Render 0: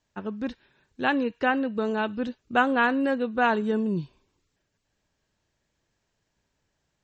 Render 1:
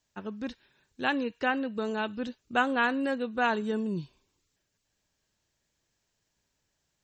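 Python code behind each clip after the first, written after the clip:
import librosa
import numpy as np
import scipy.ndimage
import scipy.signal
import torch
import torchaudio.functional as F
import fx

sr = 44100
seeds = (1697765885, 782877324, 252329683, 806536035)

y = fx.high_shelf(x, sr, hz=3600.0, db=10.0)
y = y * librosa.db_to_amplitude(-5.0)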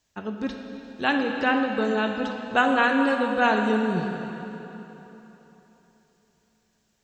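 y = fx.rev_plate(x, sr, seeds[0], rt60_s=3.5, hf_ratio=0.85, predelay_ms=0, drr_db=2.5)
y = y * librosa.db_to_amplitude(4.5)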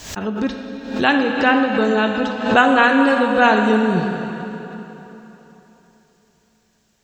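y = fx.pre_swell(x, sr, db_per_s=84.0)
y = y * librosa.db_to_amplitude(7.0)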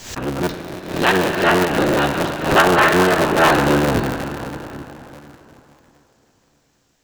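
y = fx.cycle_switch(x, sr, every=3, mode='inverted')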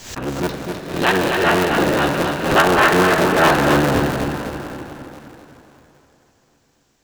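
y = fx.echo_feedback(x, sr, ms=256, feedback_pct=38, wet_db=-6)
y = y * librosa.db_to_amplitude(-1.0)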